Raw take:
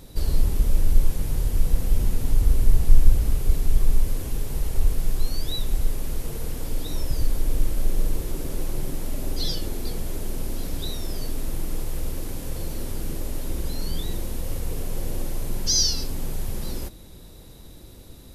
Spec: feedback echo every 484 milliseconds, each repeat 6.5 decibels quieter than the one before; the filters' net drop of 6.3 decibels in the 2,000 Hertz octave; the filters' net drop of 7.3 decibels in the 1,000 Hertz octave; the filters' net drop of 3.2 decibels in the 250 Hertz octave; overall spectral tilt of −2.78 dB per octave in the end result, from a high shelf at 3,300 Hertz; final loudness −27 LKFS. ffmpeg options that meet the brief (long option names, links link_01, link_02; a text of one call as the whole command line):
ffmpeg -i in.wav -af "equalizer=frequency=250:width_type=o:gain=-4,equalizer=frequency=1000:width_type=o:gain=-8.5,equalizer=frequency=2000:width_type=o:gain=-8,highshelf=frequency=3300:gain=6,aecho=1:1:484|968|1452|1936|2420|2904:0.473|0.222|0.105|0.0491|0.0231|0.0109,volume=-0.5dB" out.wav